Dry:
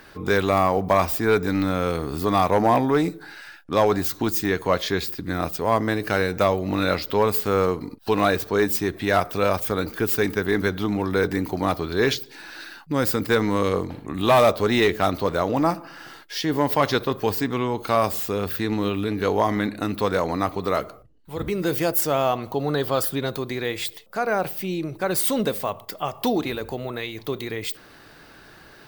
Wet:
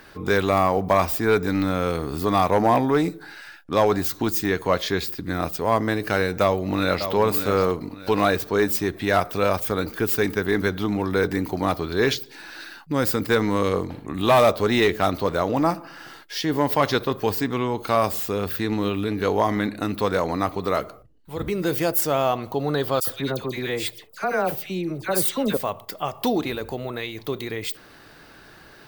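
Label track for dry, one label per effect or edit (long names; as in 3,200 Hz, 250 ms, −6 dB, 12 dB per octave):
6.410000	7.120000	delay throw 590 ms, feedback 35%, level −9 dB
23.000000	25.570000	all-pass dispersion lows, late by 74 ms, half as late at 1,700 Hz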